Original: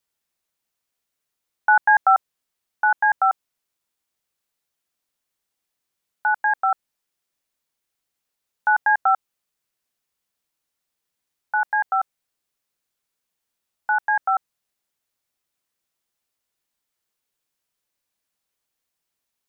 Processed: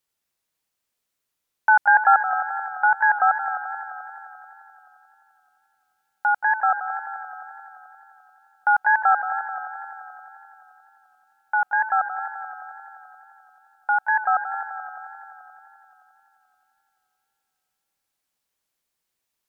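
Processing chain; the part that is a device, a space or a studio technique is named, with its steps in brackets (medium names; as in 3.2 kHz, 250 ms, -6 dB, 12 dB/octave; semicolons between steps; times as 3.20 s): multi-head tape echo (multi-head delay 87 ms, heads second and third, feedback 63%, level -11.5 dB; wow and flutter)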